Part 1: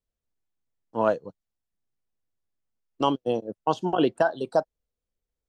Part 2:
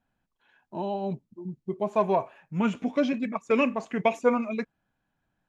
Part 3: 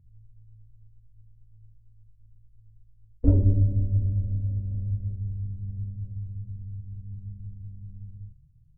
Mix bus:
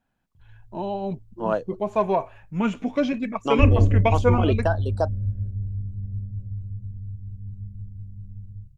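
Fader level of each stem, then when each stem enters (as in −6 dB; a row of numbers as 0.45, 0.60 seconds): −1.5, +2.0, +2.5 decibels; 0.45, 0.00, 0.35 seconds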